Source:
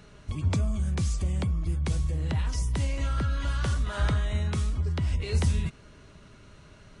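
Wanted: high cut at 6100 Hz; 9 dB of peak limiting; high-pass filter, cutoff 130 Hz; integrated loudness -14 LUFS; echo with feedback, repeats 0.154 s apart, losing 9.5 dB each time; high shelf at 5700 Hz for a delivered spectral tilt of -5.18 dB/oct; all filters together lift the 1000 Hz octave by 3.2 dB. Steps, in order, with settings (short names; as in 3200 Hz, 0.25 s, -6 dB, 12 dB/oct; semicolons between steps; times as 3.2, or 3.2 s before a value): HPF 130 Hz; LPF 6100 Hz; bell 1000 Hz +4 dB; high shelf 5700 Hz +5 dB; limiter -26 dBFS; feedback echo 0.154 s, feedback 33%, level -9.5 dB; gain +21.5 dB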